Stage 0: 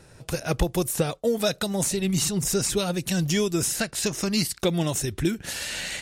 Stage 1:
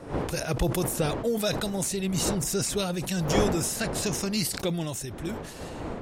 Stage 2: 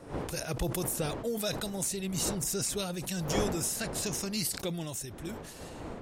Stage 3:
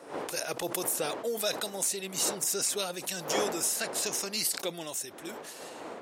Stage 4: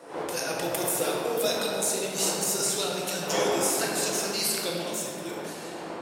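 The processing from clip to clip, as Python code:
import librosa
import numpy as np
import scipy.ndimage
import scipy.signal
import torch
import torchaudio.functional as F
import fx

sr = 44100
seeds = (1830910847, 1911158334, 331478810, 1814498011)

y1 = fx.fade_out_tail(x, sr, length_s=1.63)
y1 = fx.dmg_wind(y1, sr, seeds[0], corner_hz=540.0, level_db=-32.0)
y1 = fx.sustainer(y1, sr, db_per_s=52.0)
y1 = y1 * 10.0 ** (-4.0 / 20.0)
y2 = fx.high_shelf(y1, sr, hz=5500.0, db=6.0)
y2 = y2 * 10.0 ** (-6.5 / 20.0)
y3 = scipy.signal.sosfilt(scipy.signal.butter(2, 400.0, 'highpass', fs=sr, output='sos'), y2)
y3 = y3 * 10.0 ** (3.5 / 20.0)
y4 = fx.room_shoebox(y3, sr, seeds[1], volume_m3=170.0, walls='hard', distance_m=0.7)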